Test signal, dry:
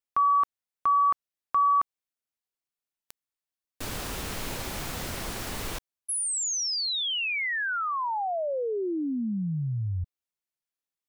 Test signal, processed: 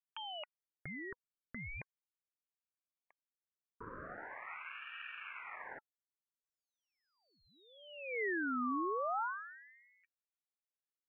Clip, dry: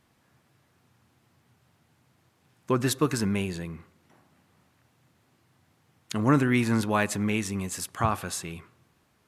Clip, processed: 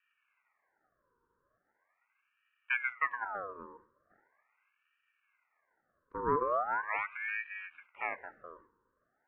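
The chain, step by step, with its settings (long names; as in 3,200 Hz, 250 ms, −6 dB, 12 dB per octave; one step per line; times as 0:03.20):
Chebyshev band-pass filter 230–820 Hz, order 3
ring modulator whose carrier an LFO sweeps 1,400 Hz, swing 50%, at 0.4 Hz
level −3.5 dB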